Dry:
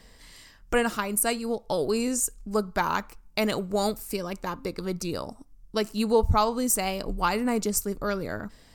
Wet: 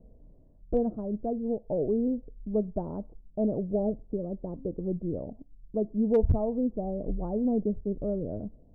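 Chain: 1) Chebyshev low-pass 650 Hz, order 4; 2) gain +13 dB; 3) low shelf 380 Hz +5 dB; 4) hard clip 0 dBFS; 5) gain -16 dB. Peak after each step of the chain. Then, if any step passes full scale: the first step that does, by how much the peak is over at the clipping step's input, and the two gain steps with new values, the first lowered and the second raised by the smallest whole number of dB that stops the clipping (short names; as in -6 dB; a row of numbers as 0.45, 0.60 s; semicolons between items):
-13.5, -0.5, +4.5, 0.0, -16.0 dBFS; step 3, 4.5 dB; step 2 +8 dB, step 5 -11 dB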